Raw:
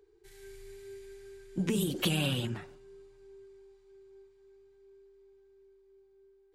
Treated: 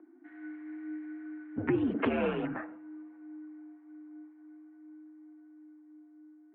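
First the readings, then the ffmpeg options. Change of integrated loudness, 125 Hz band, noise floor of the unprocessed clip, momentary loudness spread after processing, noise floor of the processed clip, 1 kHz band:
−2.5 dB, −8.0 dB, −64 dBFS, 24 LU, −57 dBFS, +6.5 dB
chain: -af "highpass=frequency=340:width_type=q:width=0.5412,highpass=frequency=340:width_type=q:width=1.307,lowpass=frequency=2000:width_type=q:width=0.5176,lowpass=frequency=2000:width_type=q:width=0.7071,lowpass=frequency=2000:width_type=q:width=1.932,afreqshift=-85,volume=8.5dB"

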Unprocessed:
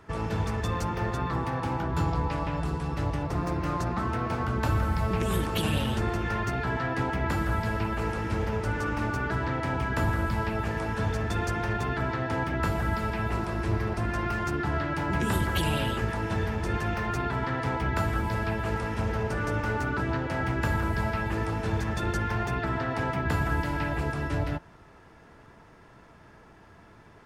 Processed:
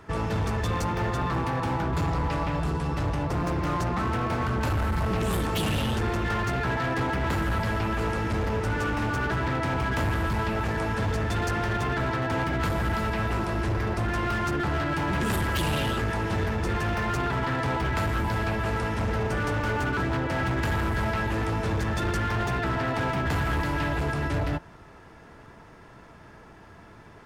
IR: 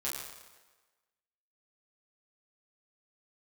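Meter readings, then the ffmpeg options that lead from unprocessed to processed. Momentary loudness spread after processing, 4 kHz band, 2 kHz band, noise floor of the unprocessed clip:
1 LU, +3.0 dB, +2.5 dB, −53 dBFS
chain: -af "volume=27dB,asoftclip=hard,volume=-27dB,volume=4dB"

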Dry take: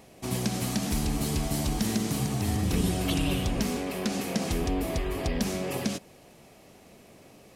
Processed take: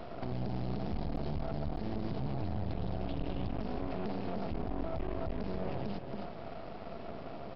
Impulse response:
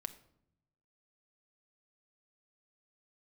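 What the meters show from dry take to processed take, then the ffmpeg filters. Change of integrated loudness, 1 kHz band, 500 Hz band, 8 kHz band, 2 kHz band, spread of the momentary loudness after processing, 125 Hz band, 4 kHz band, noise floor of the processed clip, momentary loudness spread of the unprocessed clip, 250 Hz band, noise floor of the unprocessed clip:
−10.0 dB, −5.5 dB, −6.0 dB, below −40 dB, −13.5 dB, 7 LU, −7.5 dB, −18.0 dB, −44 dBFS, 4 LU, −9.5 dB, −54 dBFS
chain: -filter_complex "[0:a]asplit=2[link_01][link_02];[link_02]aeval=exprs='0.188*sin(PI/2*3.55*val(0)/0.188)':channel_layout=same,volume=-12dB[link_03];[link_01][link_03]amix=inputs=2:normalize=0,asplit=2[link_04][link_05];[link_05]adelay=274.1,volume=-14dB,highshelf=frequency=4000:gain=-6.17[link_06];[link_04][link_06]amix=inputs=2:normalize=0,acrossover=split=110|360[link_07][link_08][link_09];[link_07]acompressor=threshold=-33dB:ratio=4[link_10];[link_08]acompressor=threshold=-37dB:ratio=4[link_11];[link_09]acompressor=threshold=-41dB:ratio=4[link_12];[link_10][link_11][link_12]amix=inputs=3:normalize=0,equalizer=frequency=680:width_type=o:width=0.24:gain=12,aresample=11025,aeval=exprs='max(val(0),0)':channel_layout=same,aresample=44100,tiltshelf=frequency=1300:gain=4.5,alimiter=level_in=1.5dB:limit=-24dB:level=0:latency=1:release=65,volume=-1.5dB"

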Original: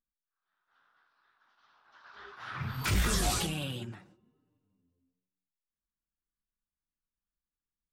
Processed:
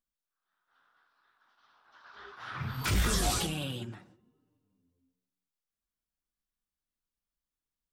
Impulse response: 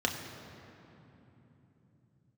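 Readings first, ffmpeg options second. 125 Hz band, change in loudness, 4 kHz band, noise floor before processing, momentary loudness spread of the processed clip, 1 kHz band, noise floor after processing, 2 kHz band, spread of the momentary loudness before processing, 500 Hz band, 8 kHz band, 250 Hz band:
0.0 dB, +0.5 dB, +0.5 dB, below −85 dBFS, 18 LU, +0.5 dB, below −85 dBFS, −0.5 dB, 21 LU, +1.0 dB, +0.5 dB, +0.5 dB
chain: -filter_complex "[0:a]asplit=2[link_01][link_02];[1:a]atrim=start_sample=2205,afade=type=out:start_time=0.26:duration=0.01,atrim=end_sample=11907[link_03];[link_02][link_03]afir=irnorm=-1:irlink=0,volume=-25dB[link_04];[link_01][link_04]amix=inputs=2:normalize=0"

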